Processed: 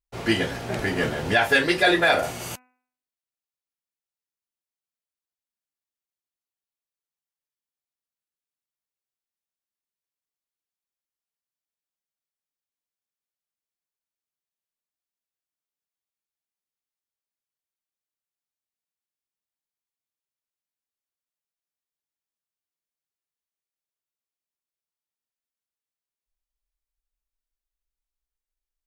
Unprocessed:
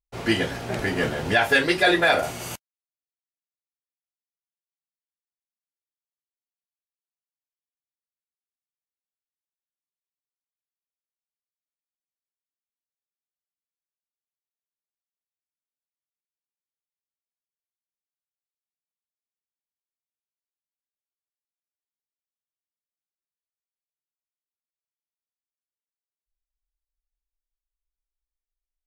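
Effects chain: de-hum 251.5 Hz, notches 11

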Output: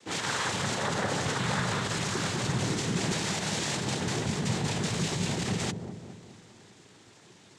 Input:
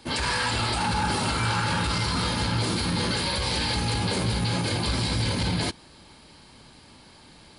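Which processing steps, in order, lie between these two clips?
noise vocoder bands 6; dark delay 0.207 s, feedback 51%, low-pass 650 Hz, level -6 dB; gain -4 dB

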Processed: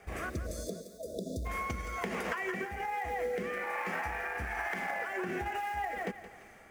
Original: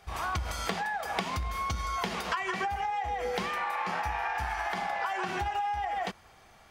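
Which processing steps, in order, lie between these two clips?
ten-band EQ 250 Hz +8 dB, 500 Hz +8 dB, 1000 Hz -3 dB, 2000 Hz +10 dB, 4000 Hz -11 dB, 8000 Hz +4 dB; in parallel at 0 dB: vocal rider 0.5 s; on the sum: companded quantiser 6-bit; rotary speaker horn 1.2 Hz; compressor, threshold -25 dBFS, peak gain reduction 9.5 dB; spectral delete 0.3–1.46, 680–3400 Hz; on a send: thinning echo 0.171 s, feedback 45%, high-pass 420 Hz, level -11.5 dB; on the sum: gain -7 dB

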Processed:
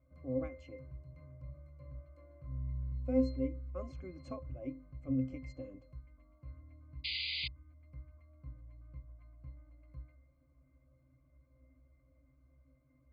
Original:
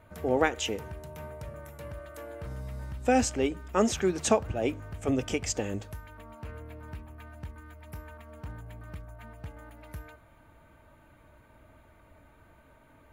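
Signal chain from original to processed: octave resonator C, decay 0.27 s; painted sound noise, 7.04–7.48, 2000–4900 Hz -39 dBFS; gain +1 dB

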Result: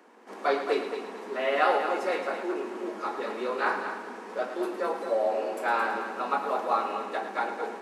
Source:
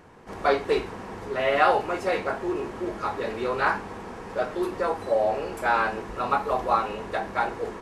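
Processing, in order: steep high-pass 210 Hz 72 dB/oct; on a send: multi-head echo 0.11 s, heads first and second, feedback 40%, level -10 dB; on the sum: gain -4 dB

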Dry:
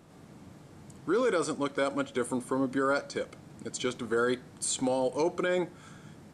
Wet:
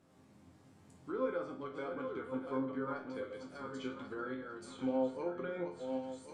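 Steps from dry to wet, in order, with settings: regenerating reverse delay 0.544 s, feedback 54%, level -6 dB; treble ducked by the level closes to 2000 Hz, closed at -26 dBFS; resonator bank F2 minor, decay 0.39 s; gain +2.5 dB

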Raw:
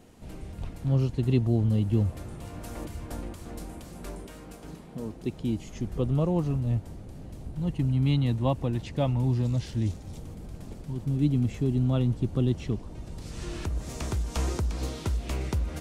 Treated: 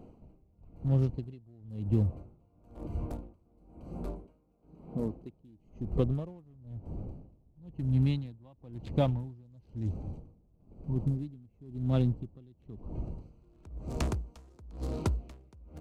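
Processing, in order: Wiener smoothing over 25 samples; compressor 3:1, threshold -27 dBFS, peak gain reduction 7.5 dB; dB-linear tremolo 1 Hz, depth 30 dB; gain +4 dB

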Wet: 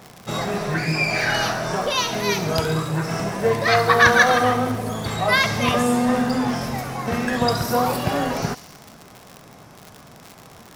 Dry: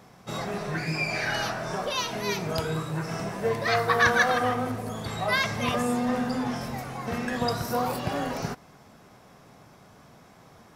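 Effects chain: on a send: thin delay 69 ms, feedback 70%, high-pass 4000 Hz, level -9 dB; on the sum: crackle 110/s -35 dBFS; gain +7 dB

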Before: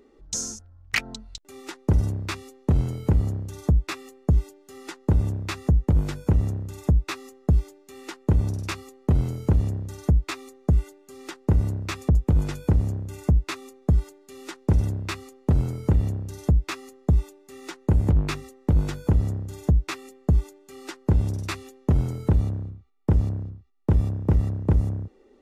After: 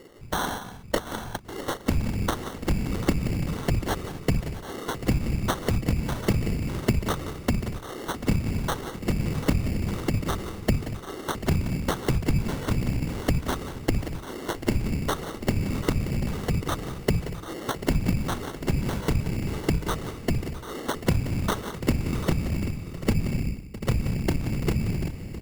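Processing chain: bell 1700 Hz +7.5 dB 1.1 oct; compressor, threshold -28 dBFS, peak gain reduction 13.5 dB; whisperiser; sample-and-hold 18×; on a send: tapped delay 0.178/0.24/0.659/0.741/0.787 s -13.5/-19/-16.5/-13.5/-13.5 dB; on the sum: gain +6 dB

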